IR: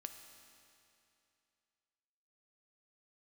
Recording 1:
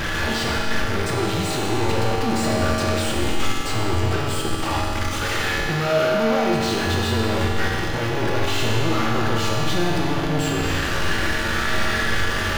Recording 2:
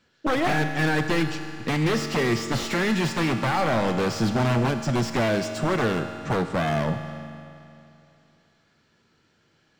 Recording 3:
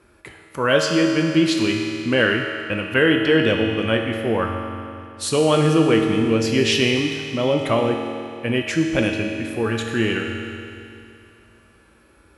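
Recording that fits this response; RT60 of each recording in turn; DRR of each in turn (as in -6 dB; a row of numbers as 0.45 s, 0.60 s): 2; 2.7 s, 2.7 s, 2.7 s; -3.0 dB, 6.0 dB, 1.0 dB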